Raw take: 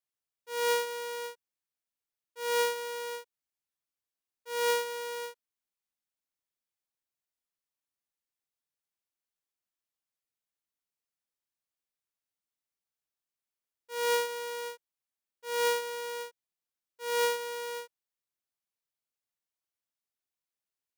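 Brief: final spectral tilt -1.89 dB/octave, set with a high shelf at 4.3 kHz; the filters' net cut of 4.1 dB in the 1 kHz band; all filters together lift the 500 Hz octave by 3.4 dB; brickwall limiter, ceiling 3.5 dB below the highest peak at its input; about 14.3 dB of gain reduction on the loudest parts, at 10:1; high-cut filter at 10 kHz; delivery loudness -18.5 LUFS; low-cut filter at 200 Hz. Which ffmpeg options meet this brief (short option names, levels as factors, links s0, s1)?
-af "highpass=200,lowpass=10000,equalizer=f=500:t=o:g=4.5,equalizer=f=1000:t=o:g=-6,highshelf=f=4300:g=7.5,acompressor=threshold=0.0158:ratio=10,volume=15.8,alimiter=limit=0.501:level=0:latency=1"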